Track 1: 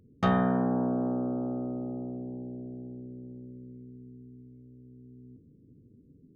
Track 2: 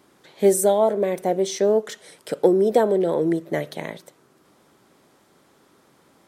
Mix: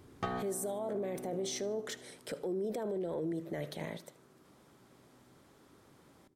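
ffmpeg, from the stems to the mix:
ffmpeg -i stem1.wav -i stem2.wav -filter_complex "[0:a]alimiter=limit=-23.5dB:level=0:latency=1:release=223,aecho=1:1:2.6:0.55,afade=type=out:start_time=1.65:duration=0.56:silence=0.237137[link_01];[1:a]lowshelf=frequency=180:gain=6.5,acompressor=threshold=-18dB:ratio=6,alimiter=limit=-23.5dB:level=0:latency=1:release=12,volume=-6dB,asplit=3[link_02][link_03][link_04];[link_03]volume=-20dB[link_05];[link_04]apad=whole_len=280474[link_06];[link_01][link_06]sidechaincompress=threshold=-52dB:ratio=5:attack=5.8:release=1260[link_07];[link_05]aecho=0:1:76|152|228|304|380|456:1|0.42|0.176|0.0741|0.0311|0.0131[link_08];[link_07][link_02][link_08]amix=inputs=3:normalize=0" out.wav

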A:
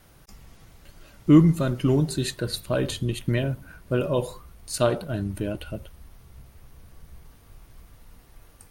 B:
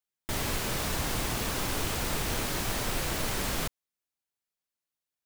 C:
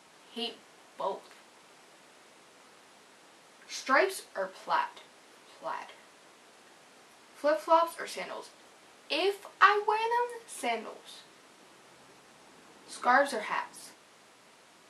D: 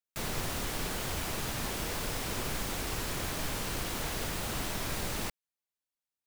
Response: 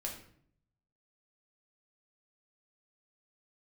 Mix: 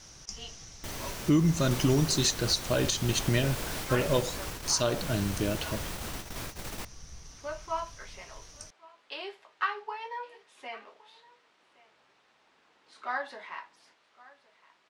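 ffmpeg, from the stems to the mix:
-filter_complex "[0:a]lowpass=frequency=5900:width_type=q:width=7.4,highshelf=frequency=2600:gain=6.5,volume=-1.5dB,asplit=2[link_01][link_02];[1:a]adelay=550,volume=-8dB[link_03];[2:a]lowpass=4200,equalizer=frequency=200:width=0.38:gain=-9.5,volume=-6.5dB,asplit=2[link_04][link_05];[link_05]volume=-22dB[link_06];[3:a]adelay=1550,volume=-2.5dB[link_07];[link_02]apad=whole_len=344520[link_08];[link_07][link_08]sidechaingate=range=-33dB:threshold=-47dB:ratio=16:detection=peak[link_09];[link_06]aecho=0:1:1115:1[link_10];[link_01][link_03][link_04][link_09][link_10]amix=inputs=5:normalize=0,alimiter=limit=-15dB:level=0:latency=1:release=227"

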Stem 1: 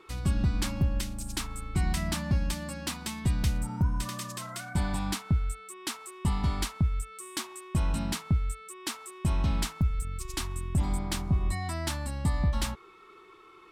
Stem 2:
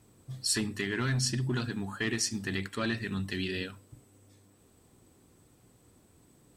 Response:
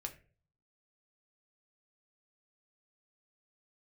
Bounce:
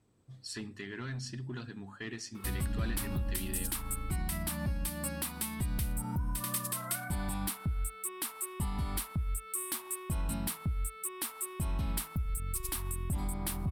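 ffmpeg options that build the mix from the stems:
-filter_complex "[0:a]alimiter=level_in=4dB:limit=-24dB:level=0:latency=1:release=240,volume=-4dB,aexciter=amount=10.6:drive=3.8:freq=9200,adelay=2350,volume=1.5dB[link_01];[1:a]highshelf=frequency=8400:gain=-7,volume=-9.5dB[link_02];[link_01][link_02]amix=inputs=2:normalize=0,highshelf=frequency=8900:gain=-6.5"

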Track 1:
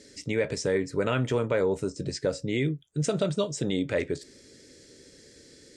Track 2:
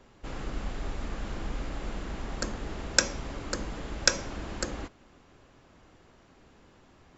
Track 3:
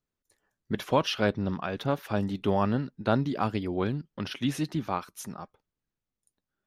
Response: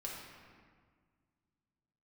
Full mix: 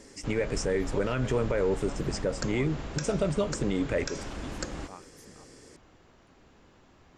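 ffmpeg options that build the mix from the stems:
-filter_complex "[0:a]equalizer=frequency=3900:width=3.2:gain=-11.5,volume=1dB[link_01];[1:a]volume=-0.5dB[link_02];[2:a]volume=-16.5dB[link_03];[link_01][link_02][link_03]amix=inputs=3:normalize=0,alimiter=limit=-17.5dB:level=0:latency=1:release=148"

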